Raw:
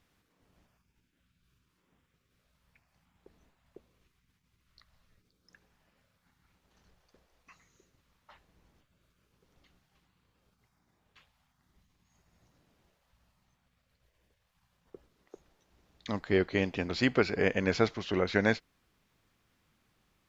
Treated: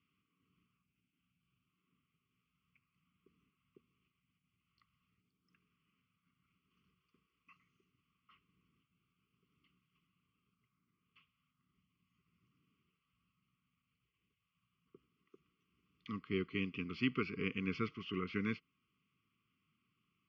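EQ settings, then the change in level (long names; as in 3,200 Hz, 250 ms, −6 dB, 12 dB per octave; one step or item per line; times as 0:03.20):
Chebyshev band-stop filter 510–1,100 Hz, order 4
loudspeaker in its box 170–3,300 Hz, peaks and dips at 220 Hz −3 dB, 330 Hz −6 dB, 900 Hz −9 dB, 1,500 Hz −9 dB, 2,300 Hz −4 dB
phaser with its sweep stopped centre 2,600 Hz, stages 8
0.0 dB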